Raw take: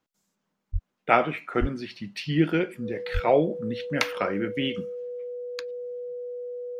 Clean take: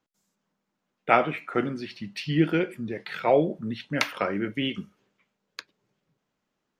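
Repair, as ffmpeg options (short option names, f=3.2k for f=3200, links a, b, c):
-filter_complex "[0:a]bandreject=f=490:w=30,asplit=3[a][b][c];[a]afade=t=out:st=0.72:d=0.02[d];[b]highpass=f=140:w=0.5412,highpass=f=140:w=1.3066,afade=t=in:st=0.72:d=0.02,afade=t=out:st=0.84:d=0.02[e];[c]afade=t=in:st=0.84:d=0.02[f];[d][e][f]amix=inputs=3:normalize=0,asplit=3[g][h][i];[g]afade=t=out:st=1.6:d=0.02[j];[h]highpass=f=140:w=0.5412,highpass=f=140:w=1.3066,afade=t=in:st=1.6:d=0.02,afade=t=out:st=1.72:d=0.02[k];[i]afade=t=in:st=1.72:d=0.02[l];[j][k][l]amix=inputs=3:normalize=0,asplit=3[m][n][o];[m]afade=t=out:st=3.13:d=0.02[p];[n]highpass=f=140:w=0.5412,highpass=f=140:w=1.3066,afade=t=in:st=3.13:d=0.02,afade=t=out:st=3.25:d=0.02[q];[o]afade=t=in:st=3.25:d=0.02[r];[p][q][r]amix=inputs=3:normalize=0"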